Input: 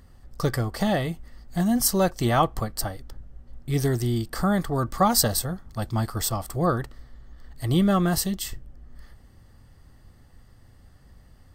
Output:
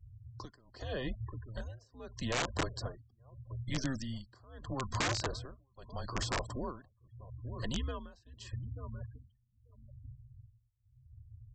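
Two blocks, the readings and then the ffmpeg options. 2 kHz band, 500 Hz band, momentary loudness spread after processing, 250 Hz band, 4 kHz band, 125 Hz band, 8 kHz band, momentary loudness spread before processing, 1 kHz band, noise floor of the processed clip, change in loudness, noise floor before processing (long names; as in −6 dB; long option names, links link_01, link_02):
−7.0 dB, −15.0 dB, 21 LU, −17.5 dB, −9.5 dB, −13.5 dB, −16.5 dB, 12 LU, −15.0 dB, −73 dBFS, −14.5 dB, −53 dBFS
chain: -filter_complex "[0:a]acompressor=threshold=-23dB:ratio=2.5,bandreject=frequency=61.16:width_type=h:width=4,bandreject=frequency=122.32:width_type=h:width=4,bandreject=frequency=183.48:width_type=h:width=4,acrossover=split=1300|3200[link_01][link_02][link_03];[link_01]acompressor=threshold=-28dB:ratio=4[link_04];[link_02]acompressor=threshold=-44dB:ratio=4[link_05];[link_03]acompressor=threshold=-37dB:ratio=4[link_06];[link_04][link_05][link_06]amix=inputs=3:normalize=0,asplit=2[link_07][link_08];[link_08]adelay=886,lowpass=frequency=2500:poles=1,volume=-15dB,asplit=2[link_09][link_10];[link_10]adelay=886,lowpass=frequency=2500:poles=1,volume=0.38,asplit=2[link_11][link_12];[link_12]adelay=886,lowpass=frequency=2500:poles=1,volume=0.38[link_13];[link_07][link_09][link_11][link_13]amix=inputs=4:normalize=0,afftfilt=real='re*gte(hypot(re,im),0.00794)':imag='im*gte(hypot(re,im),0.00794)':win_size=1024:overlap=0.75,equalizer=frequency=130:width=3.2:gain=-13,afreqshift=-130,tremolo=f=0.79:d=0.97,aresample=16000,aeval=exprs='(mod(18.8*val(0)+1,2)-1)/18.8':channel_layout=same,aresample=44100"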